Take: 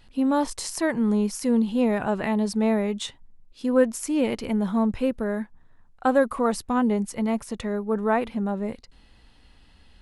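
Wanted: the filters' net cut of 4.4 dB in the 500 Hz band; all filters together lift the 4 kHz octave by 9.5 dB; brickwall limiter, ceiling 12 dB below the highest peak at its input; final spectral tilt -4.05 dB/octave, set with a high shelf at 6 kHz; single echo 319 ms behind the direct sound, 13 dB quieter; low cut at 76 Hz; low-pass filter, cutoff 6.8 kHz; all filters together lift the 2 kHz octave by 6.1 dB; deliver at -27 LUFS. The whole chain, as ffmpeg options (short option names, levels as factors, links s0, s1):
-af "highpass=76,lowpass=6800,equalizer=f=500:t=o:g=-5.5,equalizer=f=2000:t=o:g=5.5,equalizer=f=4000:t=o:g=8.5,highshelf=f=6000:g=7,alimiter=limit=0.0891:level=0:latency=1,aecho=1:1:319:0.224,volume=1.33"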